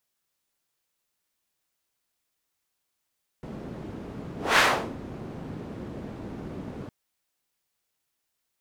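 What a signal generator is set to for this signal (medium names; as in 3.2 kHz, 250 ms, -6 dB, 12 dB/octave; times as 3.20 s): whoosh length 3.46 s, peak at 1.15 s, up 0.21 s, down 0.40 s, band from 230 Hz, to 1.7 kHz, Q 1, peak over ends 19 dB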